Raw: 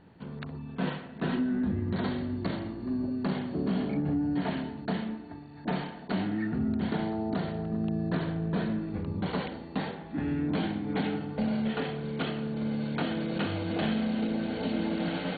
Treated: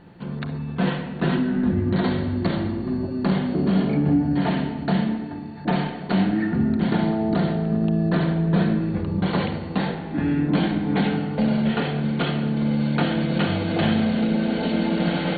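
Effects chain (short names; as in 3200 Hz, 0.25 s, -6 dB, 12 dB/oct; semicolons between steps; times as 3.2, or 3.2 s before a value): shoebox room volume 2400 m³, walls mixed, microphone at 0.85 m; gain +7.5 dB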